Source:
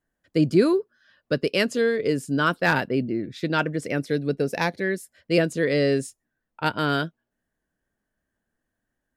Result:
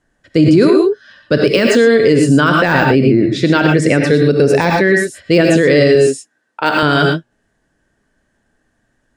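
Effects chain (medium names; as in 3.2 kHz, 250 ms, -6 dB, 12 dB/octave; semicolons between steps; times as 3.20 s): low-pass 9.3 kHz 24 dB/octave; de-esser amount 70%; 5.95–6.83 s: high-pass 320 Hz 12 dB/octave; gated-style reverb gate 140 ms rising, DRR 4.5 dB; loudness maximiser +17 dB; trim -1 dB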